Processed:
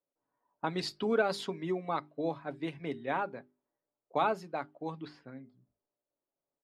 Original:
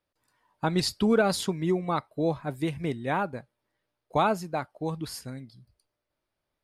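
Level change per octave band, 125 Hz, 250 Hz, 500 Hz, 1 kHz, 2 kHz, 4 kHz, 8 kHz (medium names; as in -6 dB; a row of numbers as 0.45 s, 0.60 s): -12.0 dB, -9.0 dB, -5.5 dB, -4.5 dB, -4.5 dB, -7.5 dB, under -10 dB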